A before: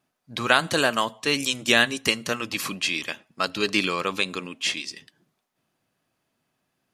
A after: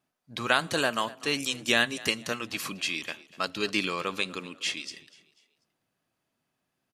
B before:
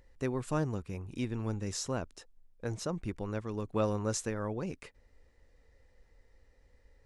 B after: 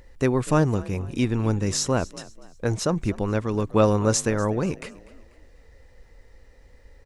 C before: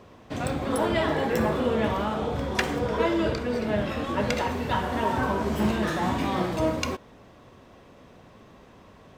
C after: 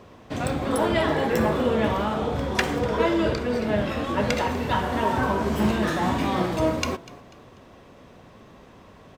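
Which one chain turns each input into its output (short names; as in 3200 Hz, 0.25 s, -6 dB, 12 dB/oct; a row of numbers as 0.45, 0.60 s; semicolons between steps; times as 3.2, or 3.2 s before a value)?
frequency-shifting echo 0.245 s, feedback 38%, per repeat +40 Hz, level -20 dB; normalise peaks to -6 dBFS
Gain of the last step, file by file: -5.0, +12.0, +2.0 dB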